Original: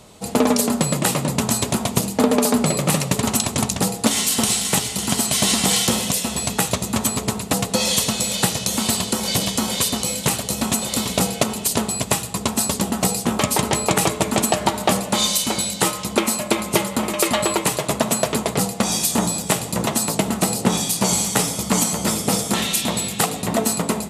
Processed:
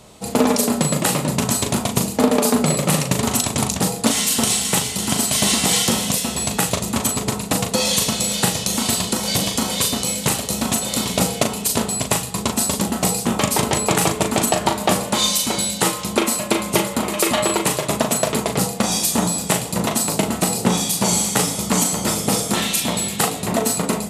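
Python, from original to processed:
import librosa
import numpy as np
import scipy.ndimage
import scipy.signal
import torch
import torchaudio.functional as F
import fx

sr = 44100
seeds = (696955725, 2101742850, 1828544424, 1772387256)

y = fx.doubler(x, sr, ms=39.0, db=-6.5)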